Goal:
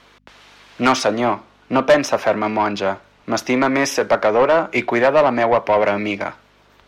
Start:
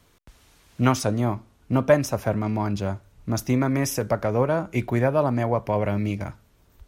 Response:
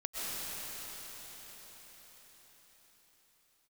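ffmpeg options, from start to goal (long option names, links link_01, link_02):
-filter_complex "[0:a]acrossover=split=210 5000:gain=0.224 1 0.141[link_01][link_02][link_03];[link_01][link_02][link_03]amix=inputs=3:normalize=0,aeval=exprs='val(0)+0.00112*(sin(2*PI*50*n/s)+sin(2*PI*2*50*n/s)/2+sin(2*PI*3*50*n/s)/3+sin(2*PI*4*50*n/s)/4+sin(2*PI*5*50*n/s)/5)':channel_layout=same,asplit=2[link_04][link_05];[link_05]highpass=frequency=720:poles=1,volume=19dB,asoftclip=type=tanh:threshold=-6dB[link_06];[link_04][link_06]amix=inputs=2:normalize=0,lowpass=frequency=7200:poles=1,volume=-6dB,volume=2dB"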